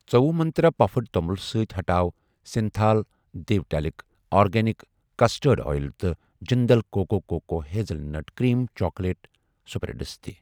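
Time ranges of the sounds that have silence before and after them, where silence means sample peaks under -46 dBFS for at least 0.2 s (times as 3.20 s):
2.46–3.03 s
3.34–4.01 s
4.32–4.84 s
5.19–6.15 s
6.42–9.35 s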